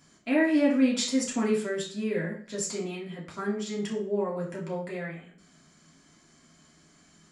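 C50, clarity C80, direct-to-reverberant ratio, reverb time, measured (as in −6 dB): 6.5 dB, 11.0 dB, −5.5 dB, 0.50 s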